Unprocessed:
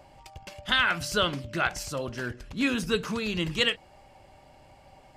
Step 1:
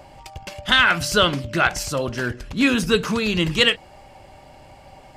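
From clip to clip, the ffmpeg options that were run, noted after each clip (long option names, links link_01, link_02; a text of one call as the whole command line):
ffmpeg -i in.wav -af "acontrast=81,volume=1.5dB" out.wav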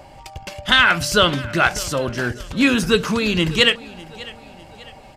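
ffmpeg -i in.wav -af "aecho=1:1:600|1200|1800:0.1|0.043|0.0185,volume=2dB" out.wav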